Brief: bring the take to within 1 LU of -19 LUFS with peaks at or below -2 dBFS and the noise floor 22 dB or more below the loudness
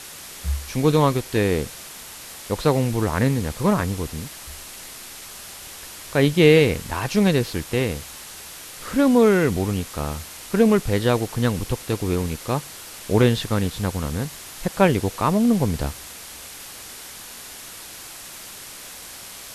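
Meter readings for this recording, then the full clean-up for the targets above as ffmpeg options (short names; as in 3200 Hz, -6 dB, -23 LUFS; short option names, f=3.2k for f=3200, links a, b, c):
noise floor -39 dBFS; noise floor target -44 dBFS; loudness -21.5 LUFS; peak -2.0 dBFS; loudness target -19.0 LUFS
-> -af "afftdn=nr=6:nf=-39"
-af "volume=2.5dB,alimiter=limit=-2dB:level=0:latency=1"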